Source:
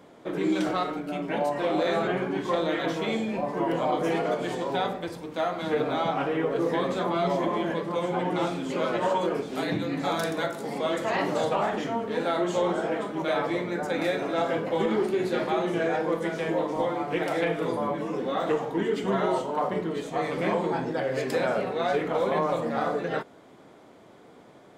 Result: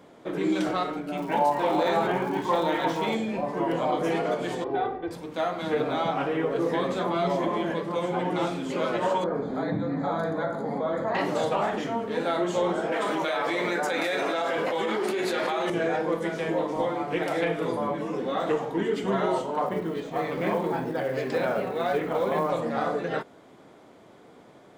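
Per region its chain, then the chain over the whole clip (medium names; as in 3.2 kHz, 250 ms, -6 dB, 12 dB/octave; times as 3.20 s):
1.16–3.14 s: peaking EQ 900 Hz +14.5 dB 0.24 oct + crackle 290 per s -37 dBFS
4.64–5.11 s: tape spacing loss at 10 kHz 42 dB + comb 2.6 ms, depth 90%
9.24–11.15 s: boxcar filter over 16 samples + peaking EQ 360 Hz -8.5 dB 0.3 oct + level flattener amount 50%
12.92–15.70 s: high-pass 740 Hz 6 dB/octave + level flattener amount 100%
19.66–22.50 s: distance through air 110 m + short-mantissa float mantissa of 4-bit
whole clip: none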